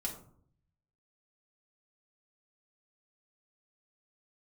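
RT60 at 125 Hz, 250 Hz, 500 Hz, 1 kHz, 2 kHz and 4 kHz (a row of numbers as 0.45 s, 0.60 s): 1.1 s, 0.80 s, 0.65 s, 0.55 s, 0.35 s, 0.25 s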